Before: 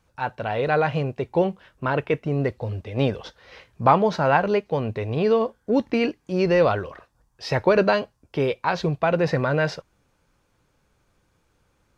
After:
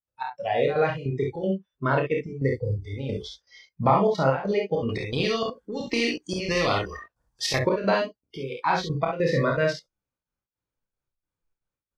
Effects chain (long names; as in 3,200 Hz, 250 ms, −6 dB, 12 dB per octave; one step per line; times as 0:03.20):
noise reduction from a noise print of the clip's start 28 dB
downward compressor 2 to 1, threshold −25 dBFS, peak gain reduction 8 dB
gate pattern ".xx..xxxx" 199 BPM −12 dB
ambience of single reflections 30 ms −4.5 dB, 51 ms −5 dB, 67 ms −6 dB
0:04.89–0:07.59: every bin compressed towards the loudest bin 2 to 1
level +1.5 dB